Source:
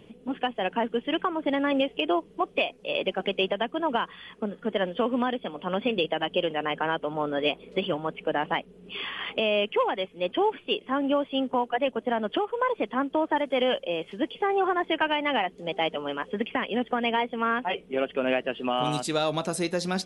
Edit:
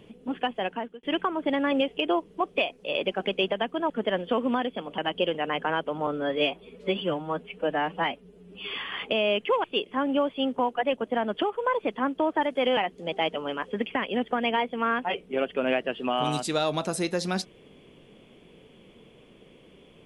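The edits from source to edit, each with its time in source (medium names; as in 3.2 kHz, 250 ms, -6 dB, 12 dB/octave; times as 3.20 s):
0.57–1.03 s: fade out
3.90–4.58 s: delete
5.66–6.14 s: delete
7.23–9.01 s: stretch 1.5×
9.91–10.59 s: delete
13.72–15.37 s: delete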